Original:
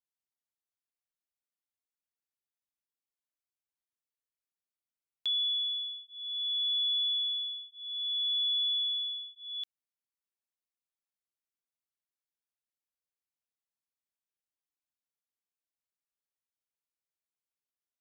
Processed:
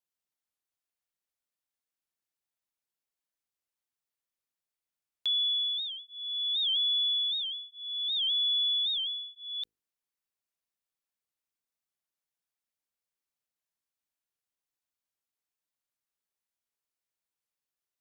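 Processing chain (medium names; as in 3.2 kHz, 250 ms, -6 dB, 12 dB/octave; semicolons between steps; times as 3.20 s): hum notches 50/100/150/200/250/300/350/400/450 Hz; warped record 78 rpm, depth 160 cents; trim +2 dB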